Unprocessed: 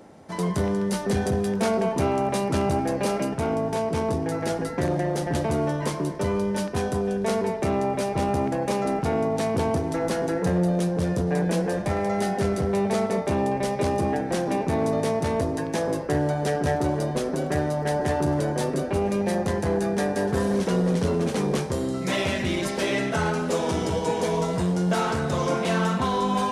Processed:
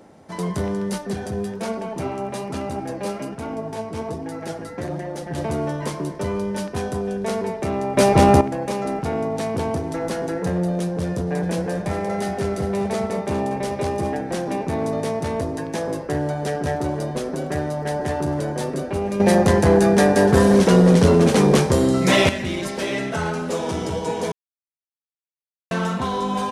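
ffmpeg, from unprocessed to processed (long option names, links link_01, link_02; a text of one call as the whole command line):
ffmpeg -i in.wav -filter_complex "[0:a]asettb=1/sr,asplit=3[link_01][link_02][link_03];[link_01]atrim=end=0.984[link_04];[link_02]atrim=start=0.98:end=5.38,asetpts=PTS-STARTPTS,afade=type=in:duration=0.004:curve=qsin,afade=type=out:start_time=4.396:duration=0.004:curve=qsin,flanger=delay=3.4:depth=6.5:regen=43:speed=1.2:shape=sinusoidal[link_05];[link_03]atrim=start=5.376[link_06];[link_04][link_05]acrossfade=duration=0.004:curve1=hsin:curve2=qsin[link_07];[link_07][link_06]acrossfade=duration=0.004:curve1=qsin:curve2=hsin,asplit=3[link_08][link_09][link_10];[link_08]afade=type=out:start_time=11.42:duration=0.02[link_11];[link_09]aecho=1:1:403:0.282,afade=type=in:start_time=11.42:duration=0.02,afade=type=out:start_time=14.16:duration=0.02[link_12];[link_10]afade=type=in:start_time=14.16:duration=0.02[link_13];[link_11][link_12][link_13]amix=inputs=3:normalize=0,asplit=7[link_14][link_15][link_16][link_17][link_18][link_19][link_20];[link_14]atrim=end=7.972[link_21];[link_15]atrim=start=7.968:end=8.412,asetpts=PTS-STARTPTS,volume=11.5dB[link_22];[link_16]atrim=start=8.408:end=19.202[link_23];[link_17]atrim=start=19.198:end=22.292,asetpts=PTS-STARTPTS,volume=9.5dB[link_24];[link_18]atrim=start=22.288:end=24.32,asetpts=PTS-STARTPTS,afade=type=out:start_time=2.028:duration=0.004:curve=hsin[link_25];[link_19]atrim=start=24.32:end=25.71,asetpts=PTS-STARTPTS,volume=0[link_26];[link_20]atrim=start=25.71,asetpts=PTS-STARTPTS,afade=type=in:duration=0.004:curve=hsin[link_27];[link_21][link_22]acrossfade=duration=0.004:curve1=hsin:curve2=hsin[link_28];[link_28][link_23]acrossfade=duration=0.004:curve1=hsin:curve2=hsin[link_29];[link_29][link_24]acrossfade=duration=0.004:curve1=hsin:curve2=hsin[link_30];[link_25][link_26][link_27]concat=n=3:v=0:a=1[link_31];[link_30][link_31]acrossfade=duration=0.004:curve1=hsin:curve2=hsin" out.wav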